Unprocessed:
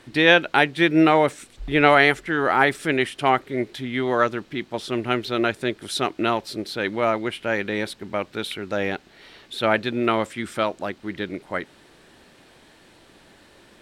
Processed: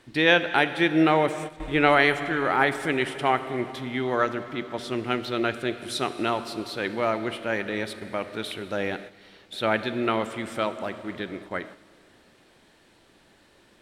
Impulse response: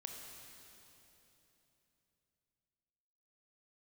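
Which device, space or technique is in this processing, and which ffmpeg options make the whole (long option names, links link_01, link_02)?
keyed gated reverb: -filter_complex "[0:a]asplit=3[link_01][link_02][link_03];[1:a]atrim=start_sample=2205[link_04];[link_02][link_04]afir=irnorm=-1:irlink=0[link_05];[link_03]apad=whole_len=609398[link_06];[link_05][link_06]sidechaingate=range=-11dB:threshold=-41dB:ratio=16:detection=peak,volume=0dB[link_07];[link_01][link_07]amix=inputs=2:normalize=0,volume=-7.5dB"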